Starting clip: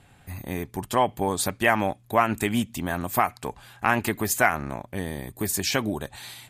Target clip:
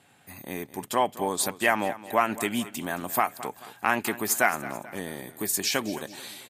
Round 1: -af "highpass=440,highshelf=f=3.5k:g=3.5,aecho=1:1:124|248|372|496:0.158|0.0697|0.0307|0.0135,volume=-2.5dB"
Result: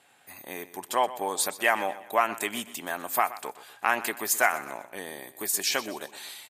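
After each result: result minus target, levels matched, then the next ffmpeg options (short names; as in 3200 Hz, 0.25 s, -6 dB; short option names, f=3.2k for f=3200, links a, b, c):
echo 94 ms early; 250 Hz band -7.5 dB
-af "highpass=440,highshelf=f=3.5k:g=3.5,aecho=1:1:218|436|654|872:0.158|0.0697|0.0307|0.0135,volume=-2.5dB"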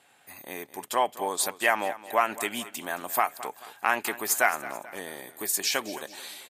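250 Hz band -7.5 dB
-af "highpass=200,highshelf=f=3.5k:g=3.5,aecho=1:1:218|436|654|872:0.158|0.0697|0.0307|0.0135,volume=-2.5dB"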